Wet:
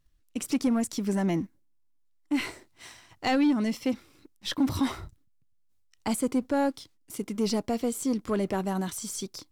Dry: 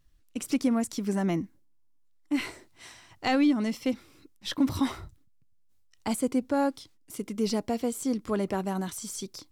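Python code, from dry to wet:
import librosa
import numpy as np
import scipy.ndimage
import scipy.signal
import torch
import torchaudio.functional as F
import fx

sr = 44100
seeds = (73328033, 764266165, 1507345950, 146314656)

y = fx.leveller(x, sr, passes=1)
y = F.gain(torch.from_numpy(y), -2.0).numpy()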